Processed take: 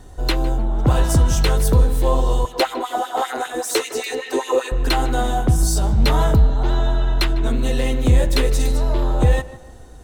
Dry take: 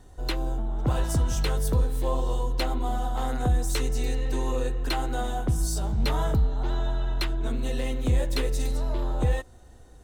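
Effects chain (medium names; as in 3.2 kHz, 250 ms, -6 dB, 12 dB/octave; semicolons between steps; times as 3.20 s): 2.45–4.72 s: LFO high-pass sine 5.1 Hz 360–2600 Hz; tape echo 153 ms, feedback 45%, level -14 dB, low-pass 2 kHz; trim +9 dB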